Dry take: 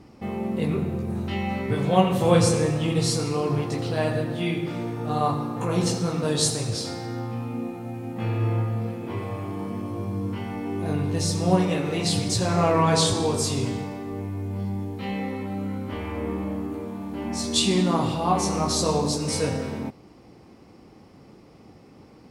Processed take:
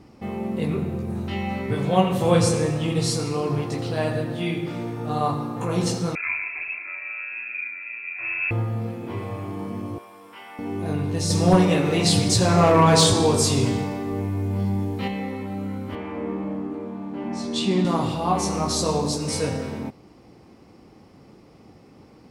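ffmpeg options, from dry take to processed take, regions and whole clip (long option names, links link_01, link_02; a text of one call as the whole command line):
ffmpeg -i in.wav -filter_complex "[0:a]asettb=1/sr,asplit=3[link_01][link_02][link_03];[link_01]atrim=end=6.154[link_04];[link_02]atrim=start=6.15:end=8.51,asetpts=PTS-STARTPTS,afade=type=in:duration=0.004:curve=qsin,afade=type=out:start_time=2.356:duration=0.004:curve=qsin,tremolo=f=91:d=0.621,aecho=1:1:3:0.74,atrim=end_sample=104076,lowpass=frequency=2300:width_type=q:width=0.5098,lowpass=frequency=2300:width_type=q:width=0.6013,lowpass=frequency=2300:width_type=q:width=0.9,lowpass=frequency=2300:width_type=q:width=2.563,afreqshift=-2700[link_05];[link_03]atrim=start=8.506[link_06];[link_04][link_05]acrossfade=duration=0.004:curve1=hsin:curve2=qsin[link_07];[link_07][link_06]acrossfade=duration=0.004:curve1=qsin:curve2=hsin,asettb=1/sr,asplit=3[link_08][link_09][link_10];[link_08]atrim=end=9.984[link_11];[link_09]atrim=start=9.98:end=10.59,asetpts=PTS-STARTPTS,afade=type=in:duration=0.004:curve=qsin,afade=type=out:start_time=0.606:duration=0.004:curve=qsin,highpass=890,equalizer=frequency=6300:width=5.6:gain=-8.5,bandreject=frequency=4300:width=8.9[link_12];[link_10]atrim=start=10.586[link_13];[link_11][link_12]acrossfade=duration=0.004:curve1=hsin:curve2=qsin[link_14];[link_14][link_13]acrossfade=duration=0.004:curve1=qsin:curve2=hsin,asettb=1/sr,asplit=3[link_15][link_16][link_17];[link_15]atrim=end=11.304[link_18];[link_16]atrim=start=11.3:end=15.08,asetpts=PTS-STARTPTS,afade=type=in:duration=0.004:curve=qsin,afade=type=out:start_time=3.776:duration=0.004:curve=qsin,acontrast=27,asoftclip=type=hard:threshold=-8dB[link_19];[link_17]atrim=start=15.076[link_20];[link_18][link_19]acrossfade=duration=0.004:curve1=hsin:curve2=qsin[link_21];[link_21][link_20]acrossfade=duration=0.004:curve1=qsin:curve2=hsin,asettb=1/sr,asplit=3[link_22][link_23][link_24];[link_22]atrim=end=15.954[link_25];[link_23]atrim=start=15.95:end=17.85,asetpts=PTS-STARTPTS,afade=type=in:duration=0.004:curve=qsin,afade=type=out:start_time=1.896:duration=0.004:curve=qsin,highpass=frequency=120:width=0.5412,highpass=frequency=120:width=1.3066,aemphasis=mode=reproduction:type=75fm[link_26];[link_24]atrim=start=17.846[link_27];[link_25][link_26]acrossfade=duration=0.004:curve1=hsin:curve2=qsin[link_28];[link_28][link_27]acrossfade=duration=0.004:curve1=qsin:curve2=hsin" out.wav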